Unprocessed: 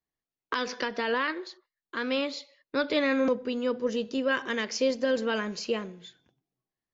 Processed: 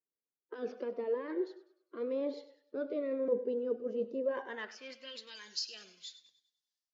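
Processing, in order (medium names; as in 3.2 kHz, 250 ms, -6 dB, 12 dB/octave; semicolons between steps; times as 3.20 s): coarse spectral quantiser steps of 15 dB; reverse; compression 10:1, threshold -37 dBFS, peak gain reduction 16 dB; reverse; band-pass sweep 450 Hz -> 5 kHz, 4.20–5.36 s; on a send: thinning echo 100 ms, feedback 43%, high-pass 240 Hz, level -15.5 dB; on the sum: level rider; Shepard-style phaser falling 0.97 Hz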